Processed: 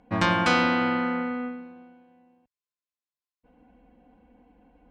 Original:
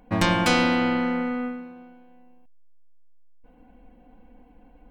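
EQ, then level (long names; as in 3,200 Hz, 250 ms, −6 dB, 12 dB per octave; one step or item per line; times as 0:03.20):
high-pass filter 51 Hz
low-pass filter 6,000 Hz 12 dB per octave
dynamic equaliser 1,300 Hz, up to +6 dB, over −37 dBFS, Q 1.5
−3.0 dB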